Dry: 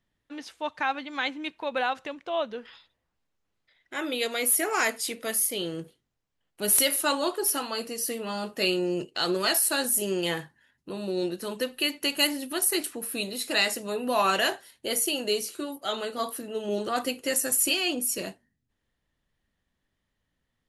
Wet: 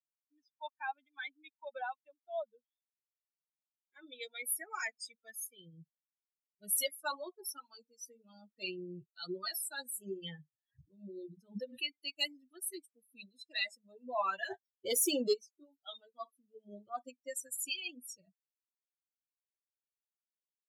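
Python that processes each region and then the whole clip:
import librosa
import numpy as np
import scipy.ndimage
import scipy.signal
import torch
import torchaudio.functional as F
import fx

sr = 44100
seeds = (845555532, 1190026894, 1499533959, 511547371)

y = fx.chain(x, sr, fx.hum_notches(base_hz=60, count=3),
    fx.pre_swell(db_per_s=53.0), at=(9.95, 11.92))
y = fx.chain(y, sr, fx.dynamic_eq(hz=2700.0, q=2.9, threshold_db=-41.0, ratio=4.0, max_db=-5),
    fx.leveller(passes=3), at=(14.5, 15.34))
y = fx.bin_expand(y, sr, power=3.0)
y = scipy.signal.sosfilt(scipy.signal.butter(2, 130.0, 'highpass', fs=sr, output='sos'), y)
y = y * librosa.db_to_amplitude(-5.5)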